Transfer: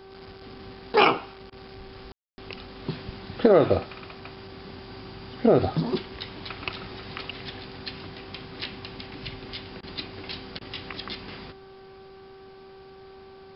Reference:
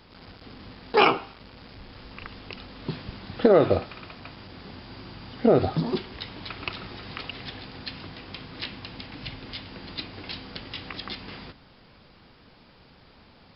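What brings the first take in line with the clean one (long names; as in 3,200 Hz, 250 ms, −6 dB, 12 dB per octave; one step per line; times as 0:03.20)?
hum removal 385.5 Hz, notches 4
ambience match 0:02.12–0:02.38
repair the gap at 0:01.50/0:09.81/0:10.59, 19 ms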